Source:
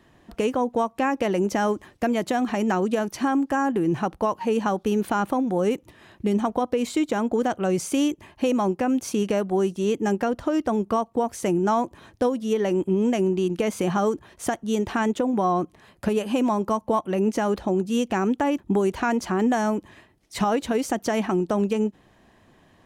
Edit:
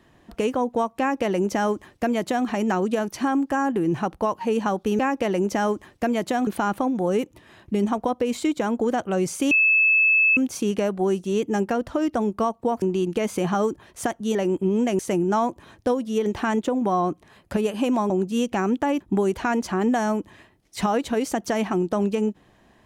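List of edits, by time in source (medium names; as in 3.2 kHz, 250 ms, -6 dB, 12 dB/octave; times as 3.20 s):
0.99–2.47 s: copy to 4.99 s
8.03–8.89 s: bleep 2.61 kHz -14.5 dBFS
11.34–12.61 s: swap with 13.25–14.78 s
16.62–17.68 s: delete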